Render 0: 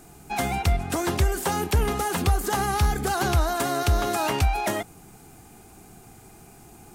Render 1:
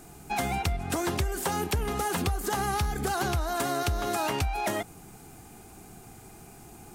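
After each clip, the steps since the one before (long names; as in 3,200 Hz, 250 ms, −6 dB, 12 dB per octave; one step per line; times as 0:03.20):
downward compressor, threshold −25 dBFS, peak gain reduction 9 dB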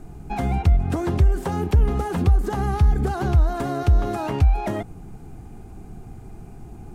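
spectral tilt −3.5 dB per octave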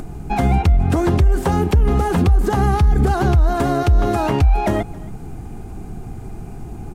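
single-tap delay 271 ms −22 dB
upward compression, threshold −35 dBFS
boost into a limiter +13.5 dB
level −6 dB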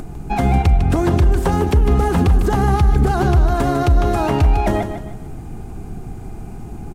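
repeating echo 152 ms, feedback 34%, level −9 dB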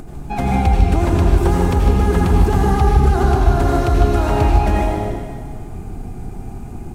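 convolution reverb RT60 1.7 s, pre-delay 73 ms, DRR −2 dB
level −3.5 dB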